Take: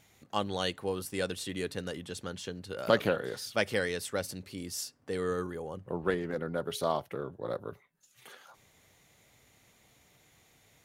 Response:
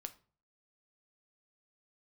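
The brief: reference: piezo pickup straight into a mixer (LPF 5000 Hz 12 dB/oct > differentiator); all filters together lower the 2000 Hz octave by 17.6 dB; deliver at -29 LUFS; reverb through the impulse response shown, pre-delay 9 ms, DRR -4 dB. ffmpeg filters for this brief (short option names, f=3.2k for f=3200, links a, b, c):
-filter_complex "[0:a]equalizer=f=2k:t=o:g=-7.5,asplit=2[a][b];[1:a]atrim=start_sample=2205,adelay=9[c];[b][c]afir=irnorm=-1:irlink=0,volume=8dB[d];[a][d]amix=inputs=2:normalize=0,lowpass=5k,aderivative,volume=16dB"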